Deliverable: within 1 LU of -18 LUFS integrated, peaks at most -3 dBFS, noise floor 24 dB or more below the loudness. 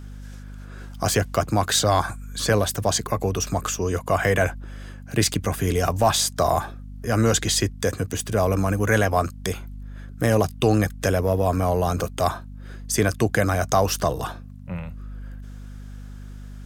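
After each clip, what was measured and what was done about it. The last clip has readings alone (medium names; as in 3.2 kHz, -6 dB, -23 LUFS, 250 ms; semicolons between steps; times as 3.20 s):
hum 50 Hz; highest harmonic 250 Hz; hum level -36 dBFS; loudness -22.5 LUFS; peak level -7.5 dBFS; loudness target -18.0 LUFS
-> de-hum 50 Hz, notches 5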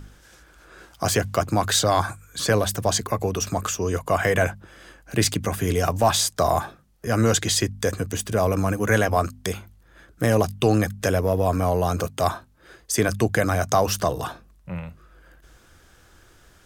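hum not found; loudness -23.0 LUFS; peak level -6.5 dBFS; loudness target -18.0 LUFS
-> trim +5 dB; peak limiter -3 dBFS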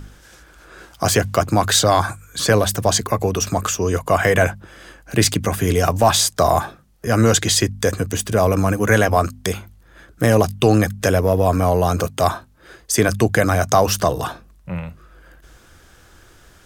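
loudness -18.0 LUFS; peak level -3.0 dBFS; noise floor -50 dBFS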